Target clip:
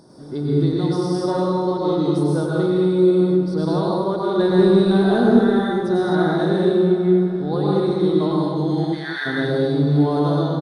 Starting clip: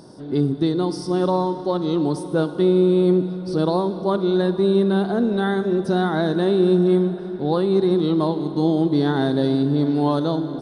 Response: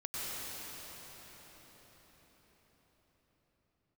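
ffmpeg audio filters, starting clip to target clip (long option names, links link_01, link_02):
-filter_complex "[0:a]asettb=1/sr,asplit=3[link_01][link_02][link_03];[link_01]atrim=end=6.654[link_04];[link_02]atrim=start=6.65:end=7.3,asetpts=PTS-STARTPTS,afade=type=in:duration=0.004:curve=qsin,afade=type=out:start_time=0.646:duration=0.004:curve=qsin,acrossover=split=3800[link_05][link_06];[link_06]acompressor=threshold=-59dB:ratio=4:attack=1:release=60[link_07];[link_05][link_07]amix=inputs=2:normalize=0[link_08];[link_03]atrim=start=7.296[link_09];[link_04][link_08]acrossfade=duration=0.004:curve1=hsin:curve2=qsin[link_10];[link_10][link_09]acrossfade=duration=0.004:curve1=qsin:curve2=hsin,equalizer=frequency=2800:width_type=o:width=0.25:gain=-9,asettb=1/sr,asplit=3[link_11][link_12][link_13];[link_11]atrim=end=4.394[link_14];[link_12]atrim=start=4.39:end=5.37,asetpts=PTS-STARTPTS,afade=type=in:duration=0.004:curve=qsin,afade=type=out:start_time=0.976:duration=0.004:curve=qsin,acontrast=45[link_15];[link_13]atrim=start=5.366[link_16];[link_14][link_15]acrossfade=duration=0.004:curve1=hsin:curve2=qsin[link_17];[link_17][link_16]acrossfade=duration=0.004:curve1=qsin:curve2=hsin,asplit=3[link_18][link_19][link_20];[link_18]afade=type=out:start_time=8.7:duration=0.02[link_21];[link_19]highpass=frequency=1800:width_type=q:width=5.9,afade=type=in:start_time=8.7:duration=0.02,afade=type=out:start_time=9.25:duration=0.02[link_22];[link_20]afade=type=in:start_time=9.25:duration=0.02[link_23];[link_21][link_22][link_23]amix=inputs=3:normalize=0,asplit=2[link_24][link_25];[link_25]adelay=204.1,volume=-9dB,highshelf=frequency=4000:gain=-4.59[link_26];[link_24][link_26]amix=inputs=2:normalize=0[link_27];[1:a]atrim=start_sample=2205,afade=type=out:start_time=0.31:duration=0.01,atrim=end_sample=14112,asetrate=42777,aresample=44100[link_28];[link_27][link_28]afir=irnorm=-1:irlink=0"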